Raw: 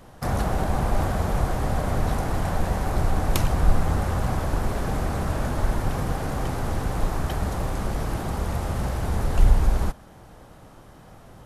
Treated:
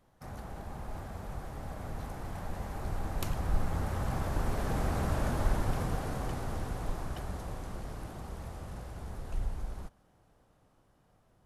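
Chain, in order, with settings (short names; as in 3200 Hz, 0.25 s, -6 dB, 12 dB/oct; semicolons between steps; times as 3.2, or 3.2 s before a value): Doppler pass-by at 5.17, 14 m/s, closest 14 m; gain -5 dB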